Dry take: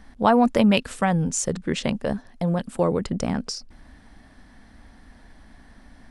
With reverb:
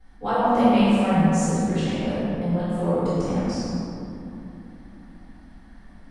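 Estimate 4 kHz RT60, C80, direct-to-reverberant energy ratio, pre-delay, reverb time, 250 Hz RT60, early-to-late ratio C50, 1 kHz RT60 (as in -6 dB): 1.3 s, -3.5 dB, -20.5 dB, 3 ms, 3.0 s, 4.5 s, -6.0 dB, 2.9 s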